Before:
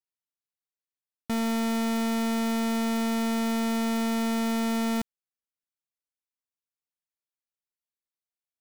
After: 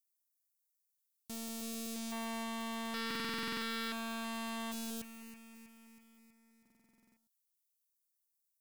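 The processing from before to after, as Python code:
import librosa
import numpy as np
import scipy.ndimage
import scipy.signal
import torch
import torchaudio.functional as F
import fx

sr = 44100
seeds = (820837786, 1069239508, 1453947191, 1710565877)

y = scipy.signal.lfilter([1.0, -0.9], [1.0], x)
y = fx.spec_box(y, sr, start_s=2.12, length_s=2.6, low_hz=740.0, high_hz=3600.0, gain_db=9)
y = fx.high_shelf(y, sr, hz=2900.0, db=6.0)
y = 10.0 ** (-31.5 / 20.0) * np.tanh(y / 10.0 ** (-31.5 / 20.0))
y = fx.filter_lfo_notch(y, sr, shape='square', hz=0.51, low_hz=520.0, high_hz=3000.0, q=1.4)
y = fx.echo_feedback(y, sr, ms=322, feedback_pct=60, wet_db=-12.5)
y = fx.buffer_glitch(y, sr, at_s=(3.06, 6.61), block=2048, repeats=11)
y = fx.doppler_dist(y, sr, depth_ms=0.47)
y = F.gain(torch.from_numpy(y), 3.5).numpy()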